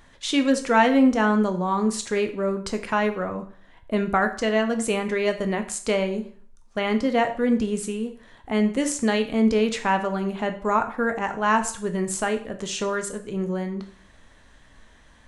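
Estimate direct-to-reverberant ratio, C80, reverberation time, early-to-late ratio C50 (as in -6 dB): 7.0 dB, 15.5 dB, 0.50 s, 12.0 dB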